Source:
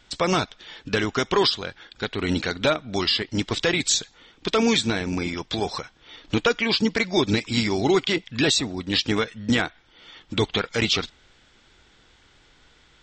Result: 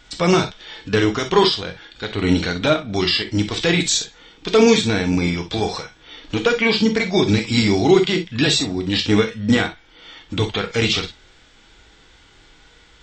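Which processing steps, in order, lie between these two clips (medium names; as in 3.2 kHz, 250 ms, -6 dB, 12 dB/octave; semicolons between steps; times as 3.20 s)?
harmonic-percussive split harmonic +9 dB; gated-style reverb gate 80 ms flat, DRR 5.5 dB; trim -1 dB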